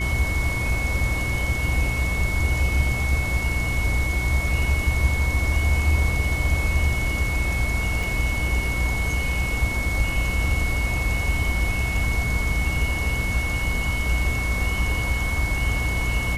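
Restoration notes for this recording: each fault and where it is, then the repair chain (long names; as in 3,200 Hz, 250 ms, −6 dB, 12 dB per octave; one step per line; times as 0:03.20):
mains hum 60 Hz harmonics 5 −28 dBFS
whistle 2,200 Hz −27 dBFS
0:08.03: drop-out 3.1 ms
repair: hum removal 60 Hz, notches 5
notch filter 2,200 Hz, Q 30
repair the gap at 0:08.03, 3.1 ms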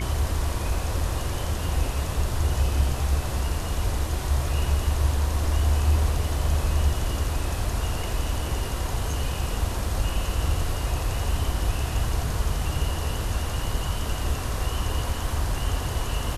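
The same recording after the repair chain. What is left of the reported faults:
none of them is left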